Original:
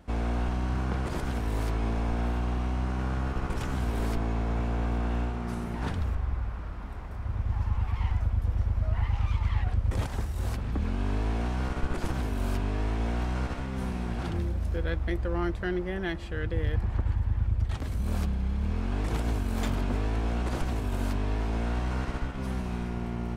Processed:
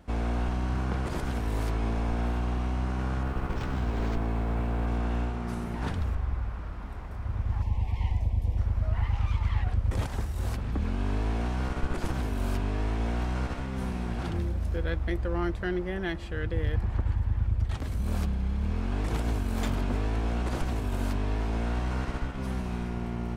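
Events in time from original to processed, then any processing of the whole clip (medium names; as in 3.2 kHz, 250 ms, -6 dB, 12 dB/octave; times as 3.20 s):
3.23–4.88 s: decimation joined by straight lines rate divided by 4×
7.62–8.58 s: Butterworth band-stop 1.4 kHz, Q 1.4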